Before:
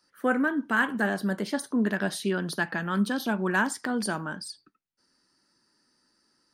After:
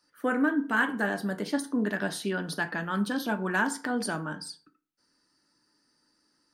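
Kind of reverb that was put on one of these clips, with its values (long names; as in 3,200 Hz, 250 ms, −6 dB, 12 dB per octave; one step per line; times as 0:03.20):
feedback delay network reverb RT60 0.43 s, low-frequency decay 0.95×, high-frequency decay 0.55×, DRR 7.5 dB
level −2 dB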